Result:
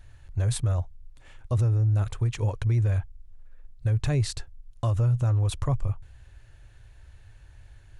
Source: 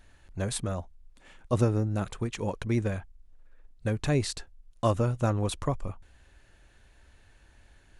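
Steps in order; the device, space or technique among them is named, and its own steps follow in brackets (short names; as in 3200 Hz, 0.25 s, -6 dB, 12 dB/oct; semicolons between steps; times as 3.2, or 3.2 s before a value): car stereo with a boomy subwoofer (resonant low shelf 150 Hz +7.5 dB, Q 3; limiter -17.5 dBFS, peak gain reduction 11 dB)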